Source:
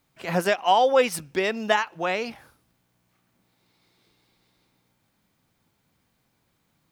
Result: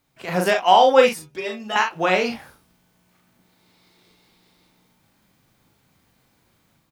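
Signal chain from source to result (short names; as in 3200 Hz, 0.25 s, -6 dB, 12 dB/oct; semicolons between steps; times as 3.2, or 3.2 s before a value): 1.09–1.76 metallic resonator 72 Hz, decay 0.41 s, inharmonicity 0.008; AGC gain up to 6 dB; early reflections 38 ms -4.5 dB, 60 ms -12.5 dB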